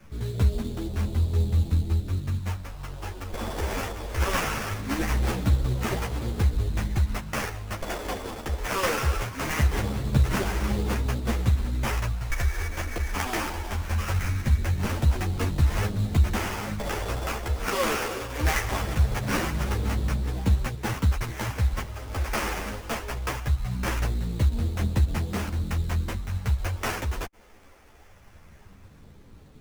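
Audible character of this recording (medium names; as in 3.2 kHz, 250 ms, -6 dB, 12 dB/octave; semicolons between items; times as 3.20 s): phasing stages 2, 0.21 Hz, lowest notch 130–2400 Hz; aliases and images of a low sample rate 4 kHz, jitter 20%; a shimmering, thickened sound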